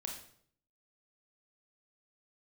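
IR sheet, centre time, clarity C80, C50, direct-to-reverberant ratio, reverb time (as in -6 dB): 29 ms, 9.0 dB, 5.5 dB, 0.5 dB, 0.60 s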